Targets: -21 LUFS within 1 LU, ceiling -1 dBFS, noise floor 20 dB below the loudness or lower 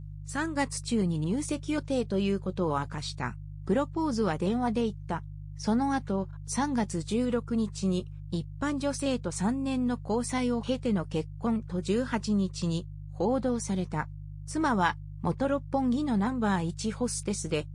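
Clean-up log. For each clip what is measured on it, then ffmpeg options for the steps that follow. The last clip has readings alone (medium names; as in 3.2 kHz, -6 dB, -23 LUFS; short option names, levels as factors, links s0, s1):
hum 50 Hz; highest harmonic 150 Hz; hum level -39 dBFS; loudness -30.0 LUFS; peak level -13.0 dBFS; loudness target -21.0 LUFS
-> -af "bandreject=f=50:t=h:w=4,bandreject=f=100:t=h:w=4,bandreject=f=150:t=h:w=4"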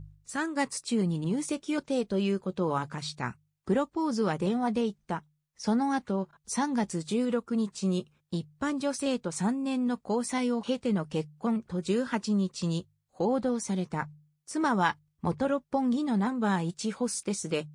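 hum not found; loudness -30.5 LUFS; peak level -13.0 dBFS; loudness target -21.0 LUFS
-> -af "volume=2.99"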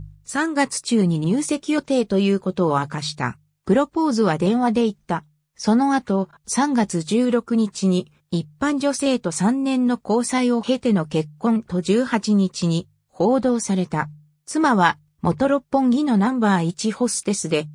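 loudness -21.0 LUFS; peak level -3.5 dBFS; noise floor -67 dBFS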